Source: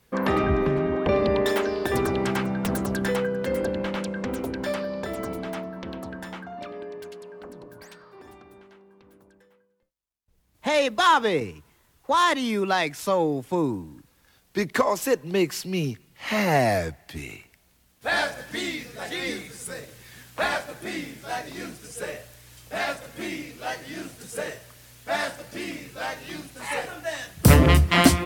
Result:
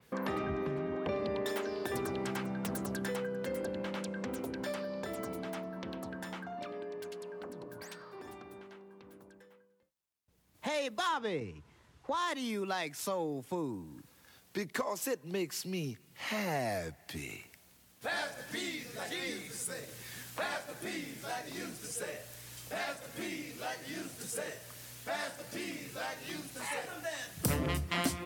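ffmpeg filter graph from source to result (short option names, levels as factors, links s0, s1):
-filter_complex "[0:a]asettb=1/sr,asplit=3[s0][s1][s2];[s0]atrim=end=11.094[s3];[s1]atrim=start=11.09:end=12.28,asetpts=PTS-STARTPTS,afade=t=in:d=0.004:c=qsin,afade=t=out:st=1.186:d=0.004:c=qsin,lowshelf=f=110:g=10.5,adynamicsmooth=sensitivity=1.5:basefreq=6200[s4];[s2]atrim=start=12.276[s5];[s3][s4]acrossfade=d=0.004:c1=hsin:c2=qsin[s6];[s6][s5]acrossfade=d=0.004:c1=qsin:c2=hsin,highpass=91,acompressor=threshold=0.00708:ratio=2,adynamicequalizer=threshold=0.00224:dfrequency=4500:dqfactor=0.7:tfrequency=4500:tqfactor=0.7:attack=5:release=100:ratio=0.375:range=2:mode=boostabove:tftype=highshelf"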